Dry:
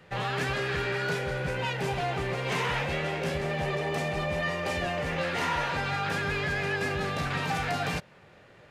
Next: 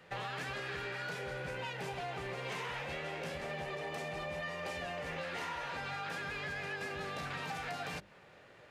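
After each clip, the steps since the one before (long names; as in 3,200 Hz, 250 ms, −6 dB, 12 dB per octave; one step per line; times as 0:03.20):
low-shelf EQ 190 Hz −6.5 dB
mains-hum notches 50/100/150/200/250/300/350/400 Hz
downward compressor, threshold −35 dBFS, peak gain reduction 9.5 dB
level −2.5 dB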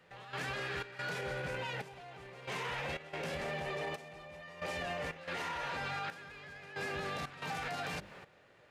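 brickwall limiter −37.5 dBFS, peak gain reduction 9 dB
gate pattern "..xxx.xxxxx.." 91 BPM −12 dB
level +7 dB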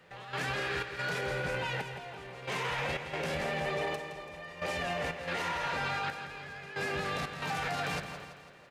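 repeating echo 167 ms, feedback 52%, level −10 dB
level +4.5 dB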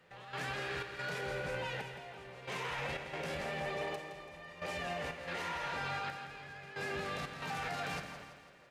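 four-comb reverb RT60 1.1 s, combs from 29 ms, DRR 10 dB
level −5.5 dB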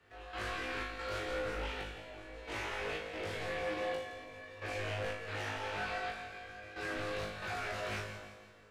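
frequency shifter −71 Hz
on a send: flutter between parallel walls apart 3.3 metres, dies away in 0.5 s
on the sum: highs frequency-modulated by the lows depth 0.3 ms
level −3.5 dB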